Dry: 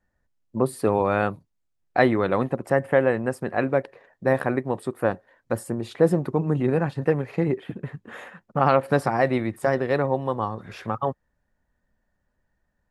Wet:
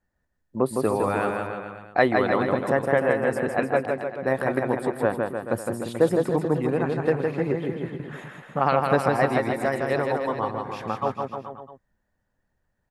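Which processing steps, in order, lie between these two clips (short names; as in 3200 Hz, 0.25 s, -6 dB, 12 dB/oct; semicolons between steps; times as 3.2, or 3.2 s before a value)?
harmonic-percussive split harmonic -6 dB; bouncing-ball echo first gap 0.16 s, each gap 0.9×, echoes 5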